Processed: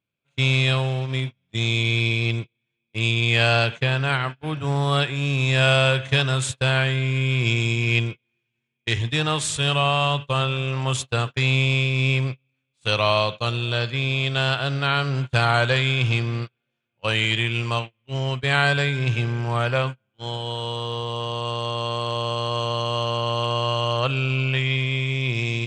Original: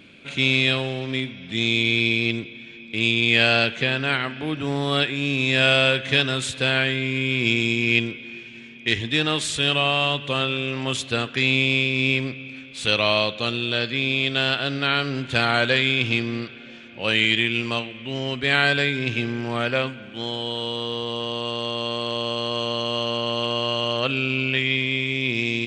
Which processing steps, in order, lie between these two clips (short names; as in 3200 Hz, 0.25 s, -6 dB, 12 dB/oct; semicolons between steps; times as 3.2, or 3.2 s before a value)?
gate -28 dBFS, range -35 dB; graphic EQ 125/250/1000/2000/4000/8000 Hz +10/-9/+6/-4/-3/+4 dB